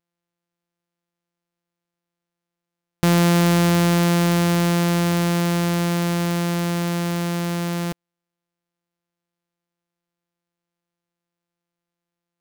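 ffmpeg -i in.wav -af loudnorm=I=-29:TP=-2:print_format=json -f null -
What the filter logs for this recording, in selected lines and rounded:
"input_i" : "-20.0",
"input_tp" : "-7.1",
"input_lra" : "6.9",
"input_thresh" : "-30.1",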